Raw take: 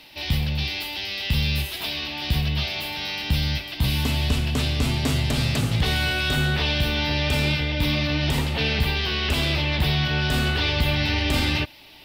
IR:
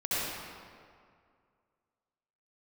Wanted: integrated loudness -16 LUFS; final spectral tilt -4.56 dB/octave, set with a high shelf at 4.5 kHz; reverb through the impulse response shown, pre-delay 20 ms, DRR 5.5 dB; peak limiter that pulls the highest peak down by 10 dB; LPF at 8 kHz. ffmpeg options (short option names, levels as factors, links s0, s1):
-filter_complex "[0:a]lowpass=8000,highshelf=f=4500:g=3,alimiter=limit=0.106:level=0:latency=1,asplit=2[s0][s1];[1:a]atrim=start_sample=2205,adelay=20[s2];[s1][s2]afir=irnorm=-1:irlink=0,volume=0.178[s3];[s0][s3]amix=inputs=2:normalize=0,volume=3.35"